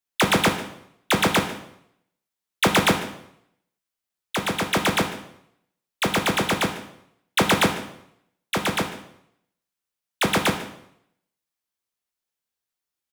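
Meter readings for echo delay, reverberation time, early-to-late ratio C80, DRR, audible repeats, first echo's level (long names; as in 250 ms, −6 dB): 148 ms, 0.75 s, 11.5 dB, 4.5 dB, 1, −18.0 dB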